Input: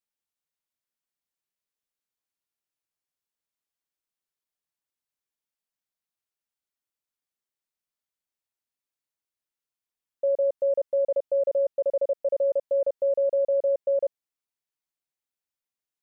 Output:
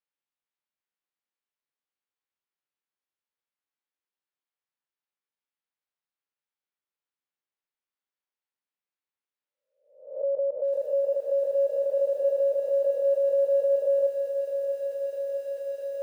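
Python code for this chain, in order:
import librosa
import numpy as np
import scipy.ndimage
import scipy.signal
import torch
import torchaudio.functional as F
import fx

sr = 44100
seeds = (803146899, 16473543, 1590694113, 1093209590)

y = fx.spec_swells(x, sr, rise_s=0.58)
y = fx.highpass(y, sr, hz=450.0, slope=6)
y = fx.air_absorb(y, sr, metres=240.0)
y = fx.notch(y, sr, hz=660.0, q=12.0)
y = fx.echo_crushed(y, sr, ms=654, feedback_pct=80, bits=9, wet_db=-10.0)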